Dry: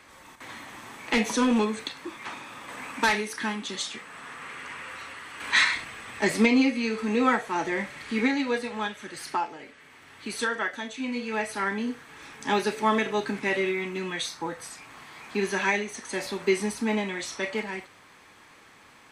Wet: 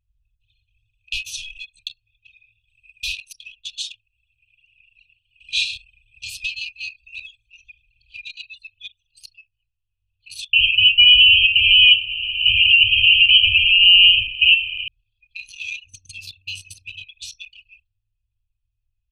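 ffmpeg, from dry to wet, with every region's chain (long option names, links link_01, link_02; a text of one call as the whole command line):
ffmpeg -i in.wav -filter_complex "[0:a]asettb=1/sr,asplit=3[link_01][link_02][link_03];[link_01]atrim=end=10.534[link_04];[link_02]atrim=start=10.53:end=14.88,asetpts=PTS-STARTPTS,afade=type=in:duration=0.004:curve=qsin,afade=type=out:start_time=4.346:duration=0.004:curve=qsin,aeval=exprs='0.251*sin(PI/2*8.91*val(0)/0.251)':channel_layout=same,lowpass=frequency=2700:width_type=q:width=0.5098,lowpass=frequency=2700:width_type=q:width=0.6013,lowpass=frequency=2700:width_type=q:width=0.9,lowpass=frequency=2700:width_type=q:width=2.563,afreqshift=-3200[link_05];[link_03]atrim=start=14.876[link_06];[link_04][link_05]acrossfade=duration=0.004:curve1=hsin:curve2=qsin[link_07];[link_07][link_06]acrossfade=duration=0.004:curve1=qsin:curve2=hsin,asettb=1/sr,asplit=3[link_08][link_09][link_10];[link_08]atrim=end=15.854[link_11];[link_09]atrim=start=15.85:end=17.04,asetpts=PTS-STARTPTS,afade=type=in:duration=0.004:curve=qsin,afade=type=out:start_time=1.186:duration=0.004:curve=qsin,equalizer=frequency=2800:width=3.2:gain=2.5,aeval=exprs='val(0)+0.00355*(sin(2*PI*50*n/s)+sin(2*PI*2*50*n/s)/2+sin(2*PI*3*50*n/s)/3+sin(2*PI*4*50*n/s)/4+sin(2*PI*5*50*n/s)/5)':channel_layout=same,afreqshift=44[link_12];[link_10]atrim=start=17.036[link_13];[link_11][link_12]acrossfade=duration=0.004:curve1=hsin:curve2=qsin[link_14];[link_14][link_13]acrossfade=duration=0.004:curve1=qsin:curve2=hsin,afftfilt=real='re*(1-between(b*sr/4096,110,2400))':imag='im*(1-between(b*sr/4096,110,2400))':win_size=4096:overlap=0.75,anlmdn=1.58,equalizer=frequency=8200:width=0.79:gain=-9.5,volume=8dB" out.wav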